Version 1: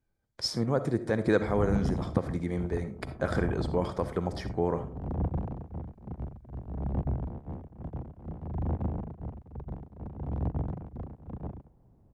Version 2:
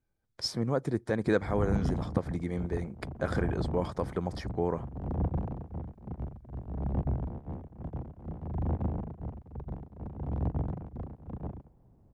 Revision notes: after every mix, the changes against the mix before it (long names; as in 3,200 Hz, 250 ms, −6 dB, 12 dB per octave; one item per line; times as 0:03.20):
reverb: off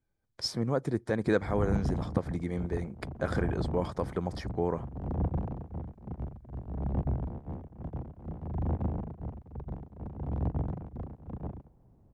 second voice −8.0 dB